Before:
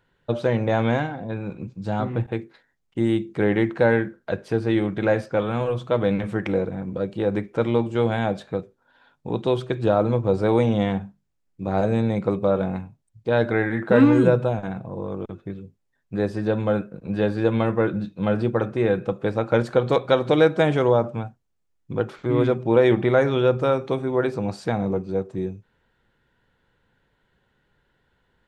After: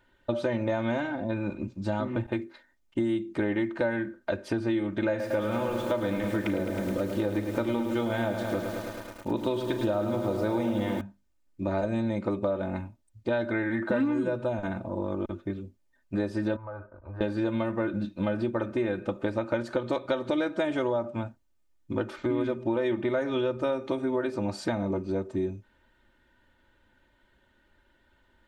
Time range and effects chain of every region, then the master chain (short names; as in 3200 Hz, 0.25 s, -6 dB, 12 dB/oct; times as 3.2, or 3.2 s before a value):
5.09–11.01 doubler 38 ms -13 dB + lo-fi delay 0.106 s, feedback 80%, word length 7-bit, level -9 dB
16.56–17.21 EQ curve 100 Hz 0 dB, 180 Hz -24 dB, 1100 Hz +4 dB, 3200 Hz -27 dB + compressor 5:1, threshold -36 dBFS
whole clip: comb 3.3 ms, depth 79%; compressor 6:1, threshold -25 dBFS